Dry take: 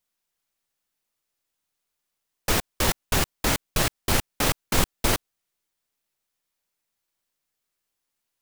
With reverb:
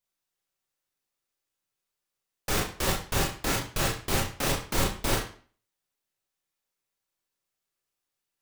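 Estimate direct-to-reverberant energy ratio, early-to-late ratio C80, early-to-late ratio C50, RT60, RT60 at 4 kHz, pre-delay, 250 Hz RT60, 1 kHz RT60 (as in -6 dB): -1.5 dB, 11.5 dB, 7.0 dB, 0.45 s, 0.40 s, 24 ms, 0.45 s, 0.45 s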